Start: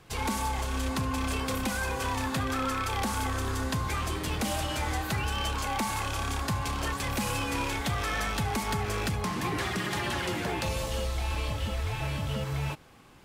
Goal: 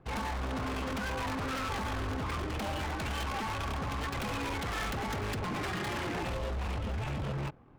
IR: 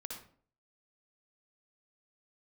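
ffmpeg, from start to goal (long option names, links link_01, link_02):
-af "atempo=1.7,adynamicsmooth=sensitivity=7:basefreq=960,aeval=exprs='0.0335*(abs(mod(val(0)/0.0335+3,4)-2)-1)':channel_layout=same"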